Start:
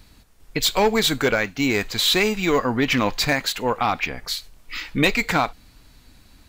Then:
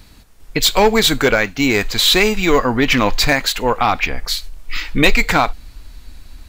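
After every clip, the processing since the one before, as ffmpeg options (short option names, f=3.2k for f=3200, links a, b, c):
-af "asubboost=boost=4:cutoff=68,volume=6dB"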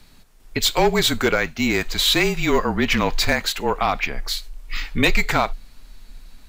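-af "afreqshift=-34,volume=-5dB"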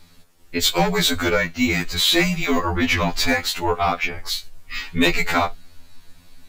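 -af "afftfilt=real='re*2*eq(mod(b,4),0)':imag='im*2*eq(mod(b,4),0)':win_size=2048:overlap=0.75,volume=2.5dB"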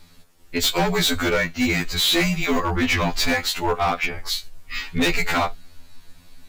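-af "volume=15dB,asoftclip=hard,volume=-15dB"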